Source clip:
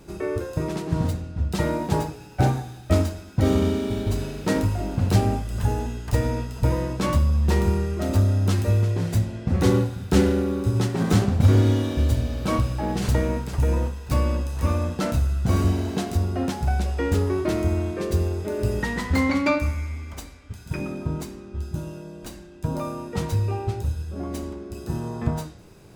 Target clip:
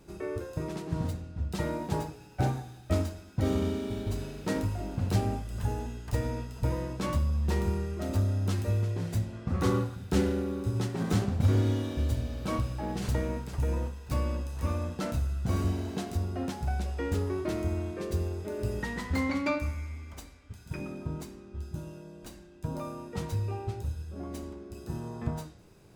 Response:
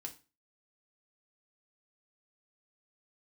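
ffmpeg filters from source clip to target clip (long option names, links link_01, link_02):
-filter_complex "[0:a]asettb=1/sr,asplit=3[link_01][link_02][link_03];[link_01]atrim=end=9.324[link_04];[link_02]atrim=start=9.32:end=9.96,asetpts=PTS-STARTPTS,afade=type=in:duration=0.004:curve=qsin,afade=type=out:start_time=0.636:duration=0.004:curve=qsin,equalizer=frequency=1200:width=3.5:gain=10[link_05];[link_03]atrim=start=9.956[link_06];[link_04][link_05]acrossfade=duration=0.004:curve1=hsin:curve2=qsin[link_07];[link_07][link_06]acrossfade=duration=0.004:curve1=qsin:curve2=hsin,volume=-8dB"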